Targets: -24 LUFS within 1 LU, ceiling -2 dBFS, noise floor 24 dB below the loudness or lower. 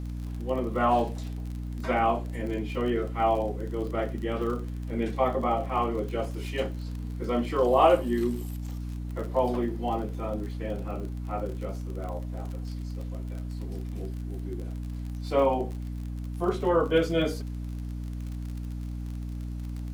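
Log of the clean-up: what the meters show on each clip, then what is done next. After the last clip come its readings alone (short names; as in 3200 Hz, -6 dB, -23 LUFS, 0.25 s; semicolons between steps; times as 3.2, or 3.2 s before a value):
ticks 37/s; hum 60 Hz; harmonics up to 300 Hz; hum level -32 dBFS; loudness -29.5 LUFS; peak -8.5 dBFS; loudness target -24.0 LUFS
-> de-click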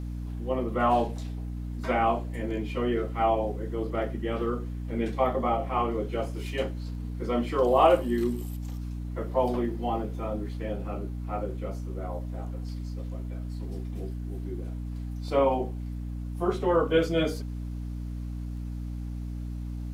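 ticks 0.10/s; hum 60 Hz; harmonics up to 300 Hz; hum level -32 dBFS
-> notches 60/120/180/240/300 Hz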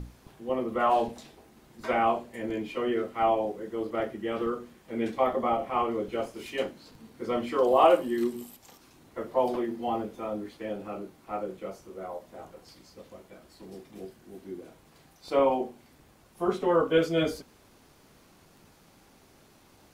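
hum none; loudness -29.0 LUFS; peak -9.0 dBFS; loudness target -24.0 LUFS
-> gain +5 dB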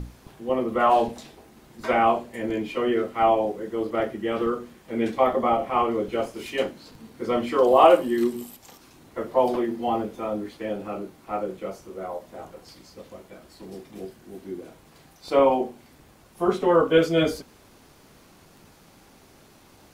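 loudness -24.0 LUFS; peak -4.0 dBFS; noise floor -54 dBFS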